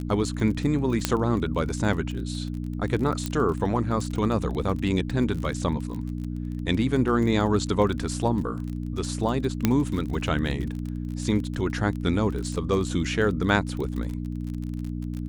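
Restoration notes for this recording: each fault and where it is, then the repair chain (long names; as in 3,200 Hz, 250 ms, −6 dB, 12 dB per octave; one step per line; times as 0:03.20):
surface crackle 30 per second −31 dBFS
mains hum 60 Hz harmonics 5 −31 dBFS
0:01.05: click −5 dBFS
0:03.26: click −13 dBFS
0:09.65: click −6 dBFS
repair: click removal
hum removal 60 Hz, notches 5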